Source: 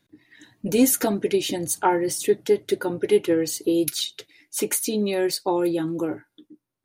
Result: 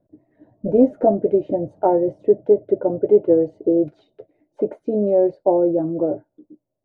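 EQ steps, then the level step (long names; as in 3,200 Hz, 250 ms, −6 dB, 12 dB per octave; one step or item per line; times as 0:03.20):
low-pass with resonance 620 Hz, resonance Q 7.6
spectral tilt −1.5 dB per octave
−2.0 dB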